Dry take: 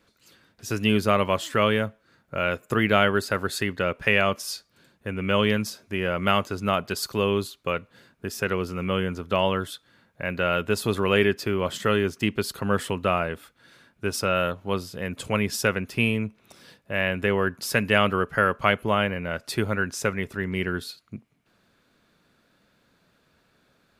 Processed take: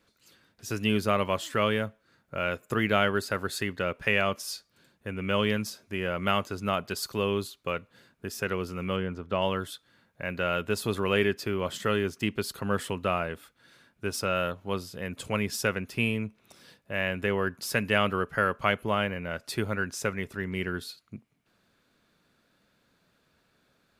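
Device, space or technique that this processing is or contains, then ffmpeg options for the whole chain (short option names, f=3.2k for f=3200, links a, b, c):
exciter from parts: -filter_complex "[0:a]asettb=1/sr,asplit=3[a][b][c];[a]atrim=end=8.964[d];[b]atrim=start=8.96:end=9.42,asetpts=PTS-STARTPTS,afade=t=in:d=0.004:c=qsin,afade=t=out:st=0.456:d=0.004:c=qsin,aemphasis=mode=reproduction:type=75kf[e];[c]atrim=start=9.416[f];[d][e]acrossfade=d=0.004:c1=hsin:c2=qsin[g];[g][f]acrossfade=d=0.004:c1=qsin:c2=hsin,asplit=2[h][i];[i]highpass=f=3.9k:p=1,asoftclip=type=tanh:threshold=-35.5dB,volume=-11dB[j];[h][j]amix=inputs=2:normalize=0,volume=-4.5dB"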